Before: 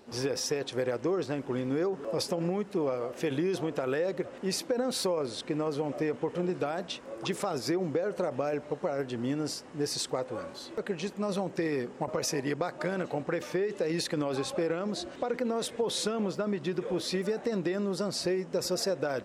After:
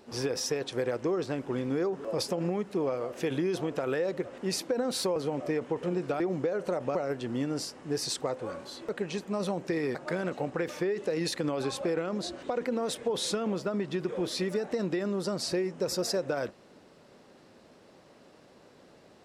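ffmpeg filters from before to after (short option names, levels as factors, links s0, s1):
-filter_complex "[0:a]asplit=5[s0][s1][s2][s3][s4];[s0]atrim=end=5.162[s5];[s1]atrim=start=5.678:end=6.722[s6];[s2]atrim=start=7.708:end=8.462[s7];[s3]atrim=start=8.838:end=11.842[s8];[s4]atrim=start=12.678[s9];[s5][s6]acrossfade=d=0.004:c1=hsin:c2=hsin[s10];[s10][s7]acrossfade=d=0.004:c1=hsin:c2=hsin[s11];[s11][s8]acrossfade=d=0.004:c1=hsin:c2=hsin[s12];[s12][s9]acrossfade=d=0.004:c1=hsin:c2=hsin"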